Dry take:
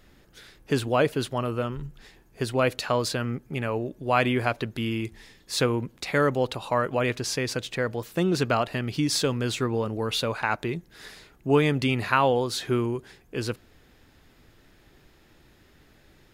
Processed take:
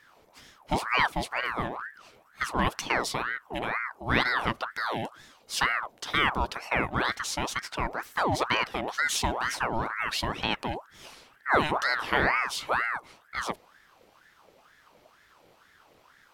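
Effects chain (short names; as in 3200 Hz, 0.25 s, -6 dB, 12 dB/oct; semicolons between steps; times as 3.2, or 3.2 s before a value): 10.77–12.41 de-hum 50.38 Hz, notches 31; ring modulator with a swept carrier 1100 Hz, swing 60%, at 2.1 Hz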